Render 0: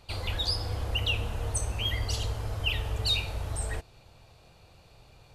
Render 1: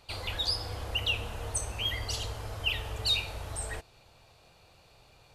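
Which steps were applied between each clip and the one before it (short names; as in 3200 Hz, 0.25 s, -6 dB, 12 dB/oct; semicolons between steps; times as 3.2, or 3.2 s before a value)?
low shelf 330 Hz -7 dB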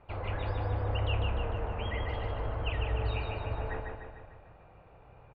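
Bessel low-pass 1400 Hz, order 6; feedback echo 0.15 s, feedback 53%, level -4 dB; on a send at -15.5 dB: reverb RT60 2.3 s, pre-delay 15 ms; on the sum: gain +3.5 dB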